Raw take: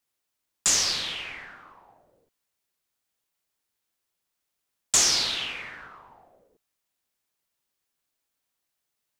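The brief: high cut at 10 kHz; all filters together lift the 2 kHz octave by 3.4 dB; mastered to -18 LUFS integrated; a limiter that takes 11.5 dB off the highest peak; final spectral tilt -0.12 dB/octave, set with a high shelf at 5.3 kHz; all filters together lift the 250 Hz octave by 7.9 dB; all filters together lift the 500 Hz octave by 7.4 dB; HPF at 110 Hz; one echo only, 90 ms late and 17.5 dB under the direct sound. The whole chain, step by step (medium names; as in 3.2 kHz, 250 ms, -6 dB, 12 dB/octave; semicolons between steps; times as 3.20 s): high-pass 110 Hz; low-pass 10 kHz; peaking EQ 250 Hz +8 dB; peaking EQ 500 Hz +7 dB; peaking EQ 2 kHz +4.5 dB; treble shelf 5.3 kHz -4.5 dB; peak limiter -20.5 dBFS; delay 90 ms -17.5 dB; trim +12.5 dB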